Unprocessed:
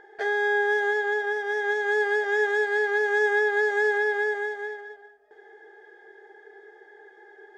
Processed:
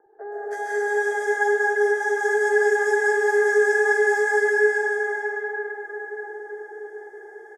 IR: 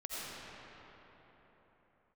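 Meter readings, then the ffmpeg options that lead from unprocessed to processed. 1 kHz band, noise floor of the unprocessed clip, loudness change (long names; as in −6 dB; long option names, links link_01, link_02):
+3.5 dB, −53 dBFS, +3.0 dB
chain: -filter_complex "[0:a]highshelf=frequency=2100:width_type=q:width=1.5:gain=-7,acrossover=split=1200|3200[link_01][link_02][link_03];[link_03]aexciter=amount=14.3:drive=5.6:freq=5700[link_04];[link_01][link_02][link_04]amix=inputs=3:normalize=0,acrossover=split=220|1100[link_05][link_06][link_07];[link_05]adelay=60[link_08];[link_07]adelay=320[link_09];[link_08][link_06][link_09]amix=inputs=3:normalize=0[link_10];[1:a]atrim=start_sample=2205,asetrate=23814,aresample=44100[link_11];[link_10][link_11]afir=irnorm=-1:irlink=0,volume=-2.5dB"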